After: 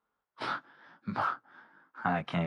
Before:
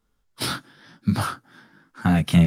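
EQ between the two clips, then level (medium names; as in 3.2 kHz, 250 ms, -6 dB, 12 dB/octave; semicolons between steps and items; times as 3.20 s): band-pass filter 1 kHz, Q 1.2; distance through air 77 m; 0.0 dB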